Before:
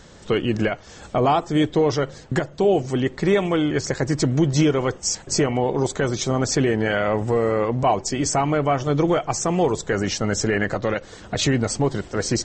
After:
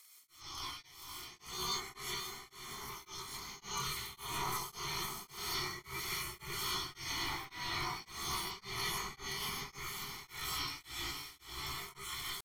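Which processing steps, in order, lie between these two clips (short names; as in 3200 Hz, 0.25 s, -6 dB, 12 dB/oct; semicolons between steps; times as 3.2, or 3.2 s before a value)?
spectral gate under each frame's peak -20 dB weak; bell 200 Hz +10 dB 0.41 oct; comb 1.8 ms, depth 85%; hard clip -22 dBFS, distortion -23 dB; limiter -29.5 dBFS, peak gain reduction 7.5 dB; auto swell 0.396 s; pitch shift +11.5 st; diffused feedback echo 0.515 s, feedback 49%, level -7 dB; non-linear reverb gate 0.19 s rising, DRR -6.5 dB; beating tremolo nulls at 1.8 Hz; gain -6 dB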